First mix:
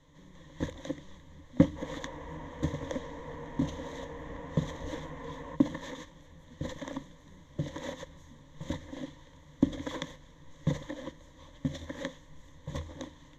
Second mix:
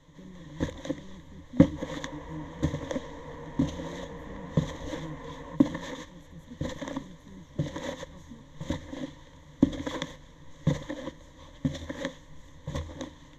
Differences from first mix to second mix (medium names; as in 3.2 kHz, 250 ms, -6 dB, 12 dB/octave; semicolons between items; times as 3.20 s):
speech +10.5 dB; first sound +3.5 dB